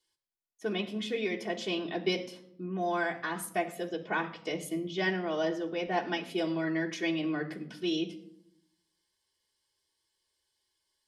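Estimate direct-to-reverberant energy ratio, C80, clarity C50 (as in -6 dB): -2.0 dB, 15.5 dB, 13.0 dB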